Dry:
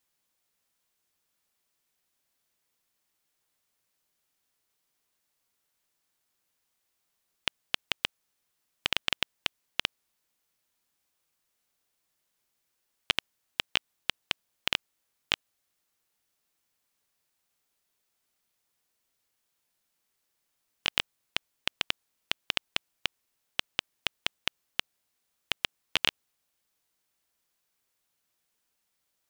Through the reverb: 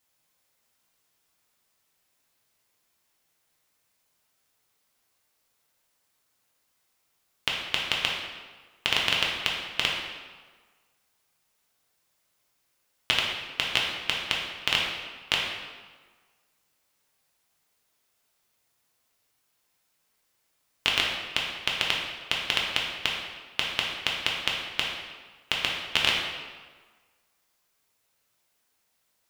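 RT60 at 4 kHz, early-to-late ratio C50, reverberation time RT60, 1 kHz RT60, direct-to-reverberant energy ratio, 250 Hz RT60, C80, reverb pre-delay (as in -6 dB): 1.1 s, 1.5 dB, 1.5 s, 1.5 s, -3.0 dB, 1.4 s, 4.0 dB, 3 ms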